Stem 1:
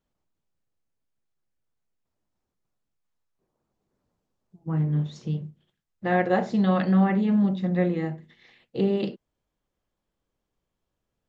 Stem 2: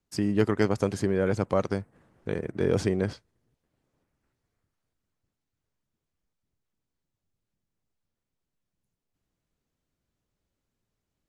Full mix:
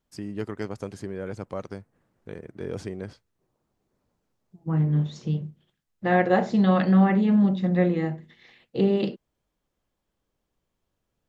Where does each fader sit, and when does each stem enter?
+2.0 dB, -8.5 dB; 0.00 s, 0.00 s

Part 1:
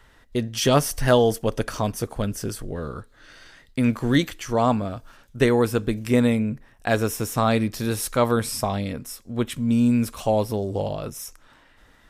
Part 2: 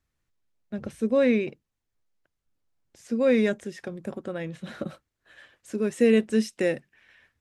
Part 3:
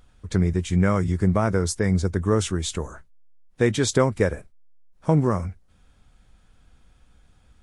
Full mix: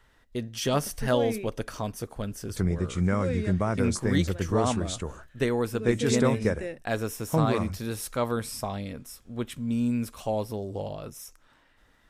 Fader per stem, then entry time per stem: -7.5 dB, -11.0 dB, -5.5 dB; 0.00 s, 0.00 s, 2.25 s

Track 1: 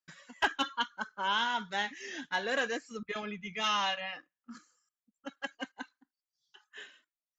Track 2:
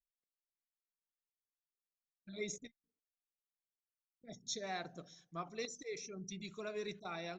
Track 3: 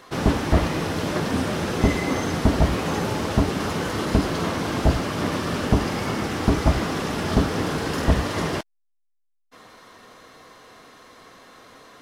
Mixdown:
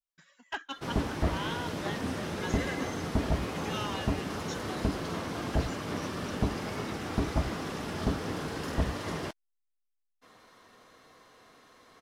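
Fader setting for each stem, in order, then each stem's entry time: -8.0 dB, -3.5 dB, -10.0 dB; 0.10 s, 0.00 s, 0.70 s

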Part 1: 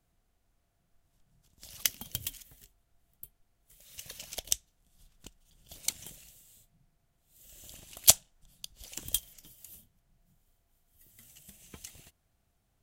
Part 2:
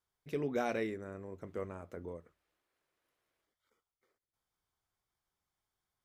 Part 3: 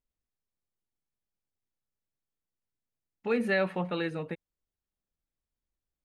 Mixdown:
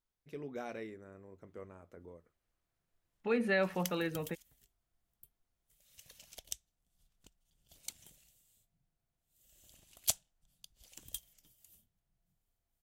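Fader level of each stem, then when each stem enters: -12.5 dB, -8.5 dB, -3.5 dB; 2.00 s, 0.00 s, 0.00 s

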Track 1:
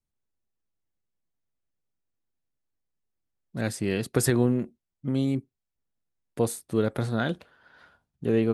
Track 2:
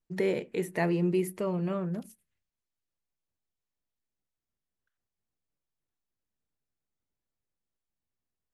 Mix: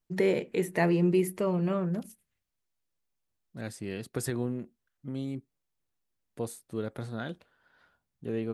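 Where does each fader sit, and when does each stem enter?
-9.5 dB, +2.5 dB; 0.00 s, 0.00 s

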